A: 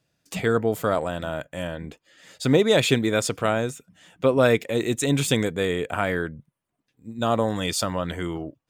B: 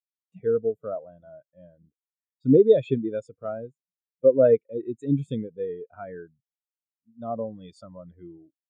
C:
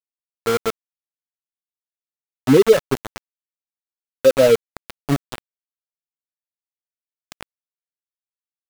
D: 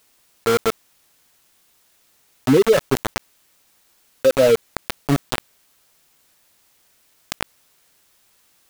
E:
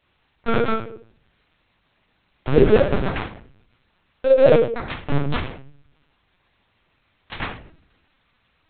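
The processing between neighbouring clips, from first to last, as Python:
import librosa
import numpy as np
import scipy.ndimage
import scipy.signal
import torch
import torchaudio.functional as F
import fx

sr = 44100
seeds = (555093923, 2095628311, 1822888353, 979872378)

y1 = fx.spectral_expand(x, sr, expansion=2.5)
y2 = y1 + 10.0 ** (-39.0 / 20.0) * np.sin(2.0 * np.pi * 1300.0 * np.arange(len(y1)) / sr)
y2 = np.where(np.abs(y2) >= 10.0 ** (-20.5 / 20.0), y2, 0.0)
y2 = y2 * 10.0 ** (4.0 / 20.0)
y3 = fx.env_flatten(y2, sr, amount_pct=50)
y3 = y3 * 10.0 ** (-3.5 / 20.0)
y4 = fx.room_shoebox(y3, sr, seeds[0], volume_m3=63.0, walls='mixed', distance_m=1.9)
y4 = fx.lpc_vocoder(y4, sr, seeds[1], excitation='pitch_kept', order=8)
y4 = y4 * 10.0 ** (-8.5 / 20.0)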